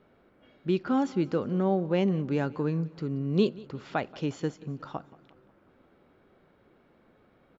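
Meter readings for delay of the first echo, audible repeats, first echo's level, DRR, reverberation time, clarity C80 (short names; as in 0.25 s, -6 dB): 0.18 s, 3, -21.5 dB, none, none, none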